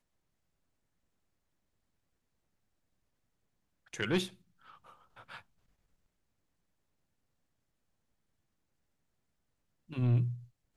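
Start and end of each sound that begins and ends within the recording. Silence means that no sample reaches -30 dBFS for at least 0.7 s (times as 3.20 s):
4.00–4.24 s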